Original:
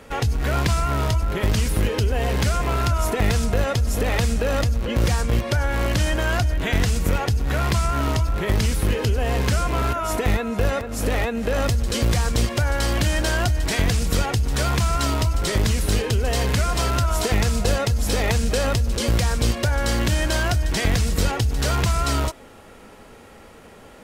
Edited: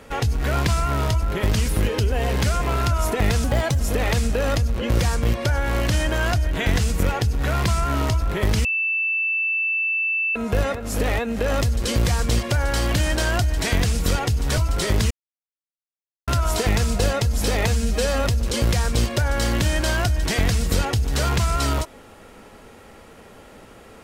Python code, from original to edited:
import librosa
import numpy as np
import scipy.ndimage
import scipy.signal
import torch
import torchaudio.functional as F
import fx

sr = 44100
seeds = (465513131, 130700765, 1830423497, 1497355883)

y = fx.edit(x, sr, fx.speed_span(start_s=3.44, length_s=0.42, speed=1.18),
    fx.bleep(start_s=8.71, length_s=1.71, hz=2650.0, db=-19.5),
    fx.cut(start_s=14.64, length_s=0.59),
    fx.silence(start_s=15.76, length_s=1.17),
    fx.stretch_span(start_s=18.33, length_s=0.38, factor=1.5), tone=tone)